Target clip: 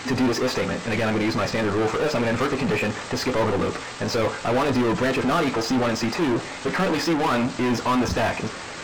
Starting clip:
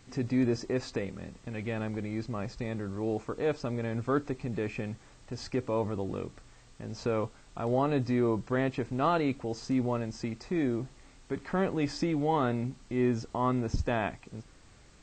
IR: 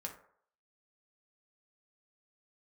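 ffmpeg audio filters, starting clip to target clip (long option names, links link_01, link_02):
-filter_complex "[0:a]asplit=2[link_01][link_02];[link_02]highpass=frequency=720:poles=1,volume=37dB,asoftclip=type=tanh:threshold=-15dB[link_03];[link_01][link_03]amix=inputs=2:normalize=0,lowpass=frequency=2900:poles=1,volume=-6dB,atempo=1.7,asplit=2[link_04][link_05];[1:a]atrim=start_sample=2205,adelay=12[link_06];[link_05][link_06]afir=irnorm=-1:irlink=0,volume=-5.5dB[link_07];[link_04][link_07]amix=inputs=2:normalize=0"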